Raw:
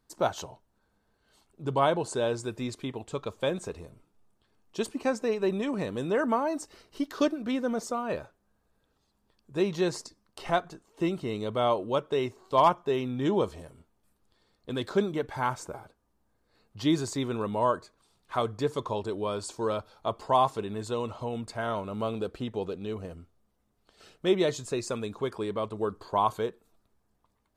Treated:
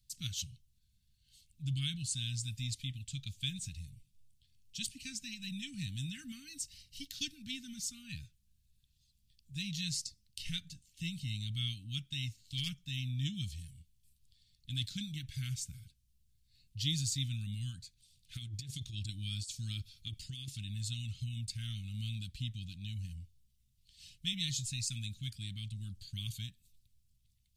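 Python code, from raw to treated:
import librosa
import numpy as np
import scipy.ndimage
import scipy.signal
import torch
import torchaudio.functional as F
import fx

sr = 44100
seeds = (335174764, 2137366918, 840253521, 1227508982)

y = scipy.signal.sosfilt(scipy.signal.cheby2(4, 70, [400.0, 1000.0], 'bandstop', fs=sr, output='sos'), x)
y = fx.over_compress(y, sr, threshold_db=-43.0, ratio=-0.5, at=(18.35, 20.48))
y = fx.small_body(y, sr, hz=(290.0, 700.0), ring_ms=45, db=10)
y = y * 10.0 ** (3.0 / 20.0)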